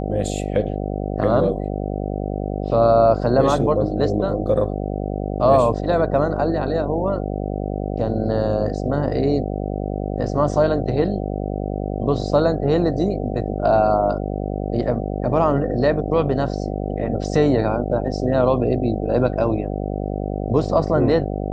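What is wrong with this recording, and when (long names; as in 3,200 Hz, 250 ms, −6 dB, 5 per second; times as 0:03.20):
mains buzz 50 Hz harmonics 15 −25 dBFS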